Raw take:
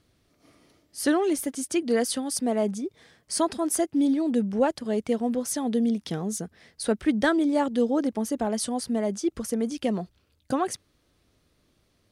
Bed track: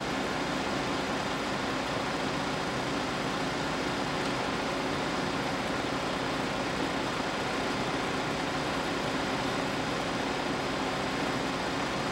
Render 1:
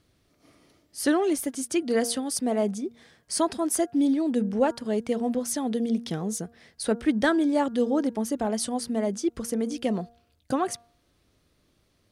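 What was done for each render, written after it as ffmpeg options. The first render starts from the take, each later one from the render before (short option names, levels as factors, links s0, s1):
-af "bandreject=f=234.7:t=h:w=4,bandreject=f=469.4:t=h:w=4,bandreject=f=704.1:t=h:w=4,bandreject=f=938.8:t=h:w=4,bandreject=f=1173.5:t=h:w=4,bandreject=f=1408.2:t=h:w=4,bandreject=f=1642.9:t=h:w=4"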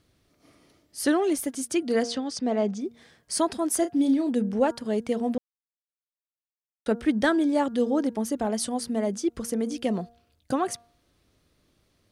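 -filter_complex "[0:a]asettb=1/sr,asplit=3[s0][s1][s2];[s0]atrim=end=2.034[s3];[s1]atrim=start=2.03:end=2.81,asetpts=PTS-STARTPTS,afade=t=in:d=0.004:c=qsin,afade=t=out:st=0.776:d=0.004:c=qsin,lowpass=f=6300:w=0.5412,lowpass=f=6300:w=1.3066[s4];[s2]atrim=start=2.806[s5];[s3][s4]acrossfade=d=0.004:c1=hsin:c2=qsin[s6];[s6][s5]acrossfade=d=0.004:c1=qsin:c2=hsin,asettb=1/sr,asplit=3[s7][s8][s9];[s7]atrim=end=3.784[s10];[s8]atrim=start=3.78:end=4.29,asetpts=PTS-STARTPTS,afade=t=in:d=0.004:c=qsin,afade=t=out:st=0.506:d=0.004:c=qsin,asplit=2[s11][s12];[s12]adelay=33,volume=0.335[s13];[s11][s13]amix=inputs=2:normalize=0,atrim=end_sample=22491[s14];[s9]atrim=start=4.286[s15];[s10][s14]acrossfade=d=0.004:c1=hsin:c2=qsin[s16];[s16][s15]acrossfade=d=0.004:c1=qsin:c2=hsin,asplit=3[s17][s18][s19];[s17]atrim=end=5.38,asetpts=PTS-STARTPTS,afade=t=out:st=5.376:d=0.004:c=hsin[s20];[s18]atrim=start=5.38:end=6.86,asetpts=PTS-STARTPTS,volume=0[s21];[s19]atrim=start=6.86,asetpts=PTS-STARTPTS,afade=t=in:d=0.004:c=hsin[s22];[s20][s21][s22]concat=n=3:v=0:a=1"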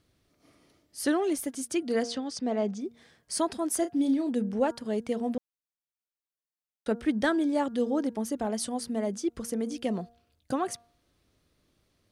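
-af "volume=0.668"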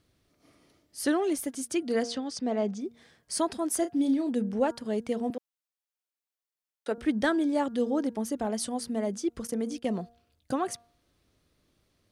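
-filter_complex "[0:a]asettb=1/sr,asplit=3[s0][s1][s2];[s0]atrim=end=5.304[s3];[s1]atrim=start=5.3:end=6.98,asetpts=PTS-STARTPTS,afade=t=in:d=0.004:c=qsin,afade=t=out:st=1.676:d=0.004:c=qsin,highpass=350[s4];[s2]atrim=start=6.976[s5];[s3][s4]acrossfade=d=0.004:c1=hsin:c2=qsin[s6];[s6][s5]acrossfade=d=0.004:c1=qsin:c2=hsin,asettb=1/sr,asplit=3[s7][s8][s9];[s7]atrim=end=9.474[s10];[s8]atrim=start=9.47:end=9.88,asetpts=PTS-STARTPTS,afade=t=in:d=0.004:c=qsin,afade=t=out:st=0.406:d=0.004:c=qsin,agate=range=0.282:threshold=0.00891:ratio=16:release=100:detection=peak[s11];[s9]atrim=start=9.876[s12];[s10][s11]acrossfade=d=0.004:c1=hsin:c2=qsin[s13];[s13][s12]acrossfade=d=0.004:c1=qsin:c2=hsin"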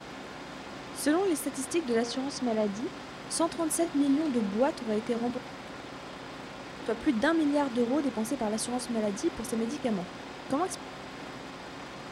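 -filter_complex "[1:a]volume=0.282[s0];[0:a][s0]amix=inputs=2:normalize=0"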